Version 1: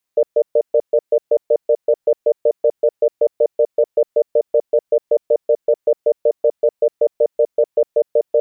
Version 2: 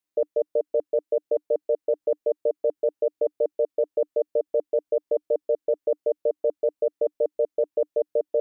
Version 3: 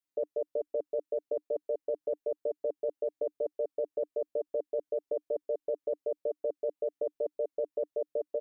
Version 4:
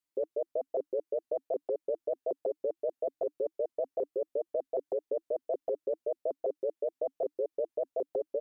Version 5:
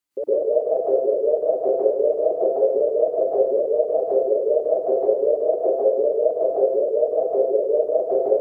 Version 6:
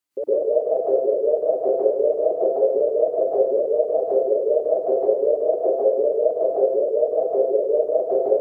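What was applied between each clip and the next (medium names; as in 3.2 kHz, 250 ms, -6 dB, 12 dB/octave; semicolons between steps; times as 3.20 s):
peaking EQ 300 Hz +13 dB 0.33 oct; trim -8.5 dB
comb 7.3 ms, depth 87%; trim -8 dB
vibrato with a chosen wave saw up 6.5 Hz, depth 250 cents
plate-style reverb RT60 0.82 s, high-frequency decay 0.75×, pre-delay 95 ms, DRR -9.5 dB; trim +4.5 dB
high-pass 55 Hz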